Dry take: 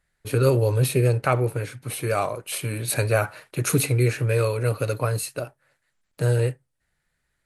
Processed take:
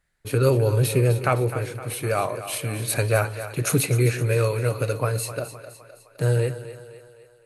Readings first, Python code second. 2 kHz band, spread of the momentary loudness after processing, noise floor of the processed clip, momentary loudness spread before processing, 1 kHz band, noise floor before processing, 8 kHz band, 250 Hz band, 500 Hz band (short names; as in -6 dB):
+0.5 dB, 10 LU, -56 dBFS, 9 LU, +0.5 dB, -76 dBFS, +0.5 dB, +0.5 dB, +0.5 dB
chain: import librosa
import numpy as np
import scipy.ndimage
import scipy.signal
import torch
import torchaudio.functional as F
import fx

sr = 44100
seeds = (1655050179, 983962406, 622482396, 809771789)

y = fx.echo_split(x, sr, split_hz=390.0, low_ms=147, high_ms=257, feedback_pct=52, wet_db=-12)